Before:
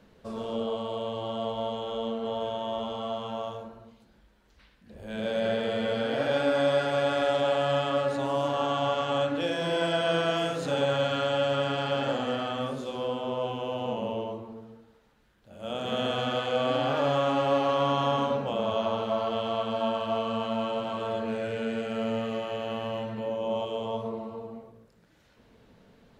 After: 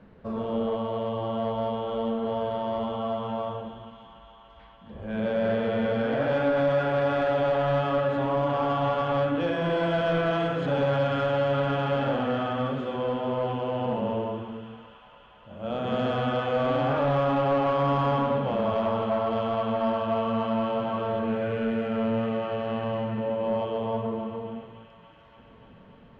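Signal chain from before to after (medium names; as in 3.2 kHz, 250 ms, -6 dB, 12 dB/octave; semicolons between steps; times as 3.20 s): tone controls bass +14 dB, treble -13 dB; feedback echo behind a high-pass 288 ms, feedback 81%, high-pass 1.5 kHz, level -11.5 dB; overdrive pedal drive 16 dB, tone 1.4 kHz, clips at -11 dBFS; trim -3.5 dB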